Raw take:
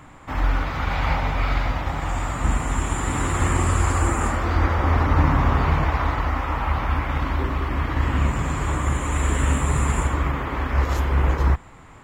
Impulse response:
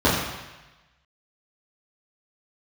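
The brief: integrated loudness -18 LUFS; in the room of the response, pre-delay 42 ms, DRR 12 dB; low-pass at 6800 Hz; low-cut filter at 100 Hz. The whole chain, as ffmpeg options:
-filter_complex "[0:a]highpass=100,lowpass=6.8k,asplit=2[a][b];[1:a]atrim=start_sample=2205,adelay=42[c];[b][c]afir=irnorm=-1:irlink=0,volume=-33dB[d];[a][d]amix=inputs=2:normalize=0,volume=7dB"

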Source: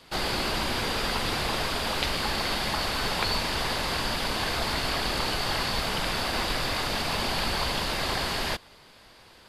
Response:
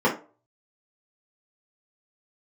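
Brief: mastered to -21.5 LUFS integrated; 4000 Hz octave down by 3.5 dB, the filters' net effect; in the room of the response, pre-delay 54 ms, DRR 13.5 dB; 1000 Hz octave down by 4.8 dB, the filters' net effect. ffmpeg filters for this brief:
-filter_complex "[0:a]equalizer=f=1k:t=o:g=-6,equalizer=f=4k:t=o:g=-4,asplit=2[a][b];[1:a]atrim=start_sample=2205,adelay=54[c];[b][c]afir=irnorm=-1:irlink=0,volume=-31dB[d];[a][d]amix=inputs=2:normalize=0,volume=8.5dB"

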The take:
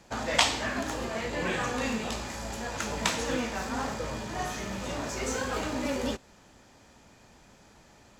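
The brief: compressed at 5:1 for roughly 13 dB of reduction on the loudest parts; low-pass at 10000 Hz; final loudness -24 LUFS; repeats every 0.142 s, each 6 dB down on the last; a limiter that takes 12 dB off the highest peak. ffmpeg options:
-af "lowpass=10k,acompressor=threshold=-35dB:ratio=5,alimiter=level_in=7dB:limit=-24dB:level=0:latency=1,volume=-7dB,aecho=1:1:142|284|426|568|710|852:0.501|0.251|0.125|0.0626|0.0313|0.0157,volume=15.5dB"

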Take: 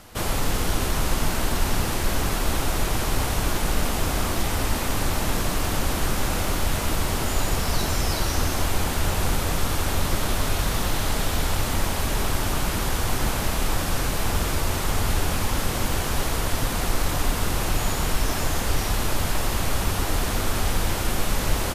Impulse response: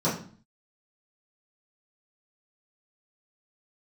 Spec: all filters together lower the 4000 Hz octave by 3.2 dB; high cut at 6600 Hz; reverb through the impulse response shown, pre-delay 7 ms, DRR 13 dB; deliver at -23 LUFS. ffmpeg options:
-filter_complex "[0:a]lowpass=6.6k,equalizer=f=4k:t=o:g=-3.5,asplit=2[a][b];[1:a]atrim=start_sample=2205,adelay=7[c];[b][c]afir=irnorm=-1:irlink=0,volume=-25.5dB[d];[a][d]amix=inputs=2:normalize=0,volume=3dB"

